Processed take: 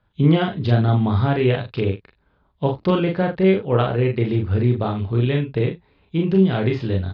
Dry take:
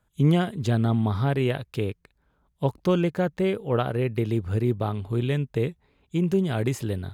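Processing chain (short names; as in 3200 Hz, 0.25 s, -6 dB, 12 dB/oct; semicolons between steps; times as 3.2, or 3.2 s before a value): steep low-pass 4700 Hz 48 dB/oct; early reflections 32 ms -5.5 dB, 42 ms -4.5 dB, 79 ms -15.5 dB; gain +3.5 dB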